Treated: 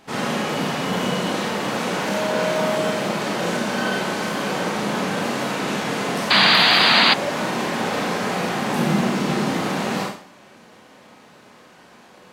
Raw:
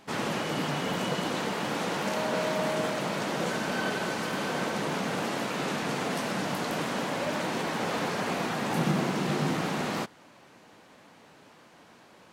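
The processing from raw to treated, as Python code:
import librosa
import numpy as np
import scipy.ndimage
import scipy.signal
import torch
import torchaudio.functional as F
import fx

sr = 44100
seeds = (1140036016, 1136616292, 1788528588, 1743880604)

y = fx.rev_schroeder(x, sr, rt60_s=0.47, comb_ms=30, drr_db=-1.5)
y = fx.spec_paint(y, sr, seeds[0], shape='noise', start_s=6.3, length_s=0.84, low_hz=630.0, high_hz=4900.0, level_db=-18.0)
y = y * librosa.db_to_amplitude(3.0)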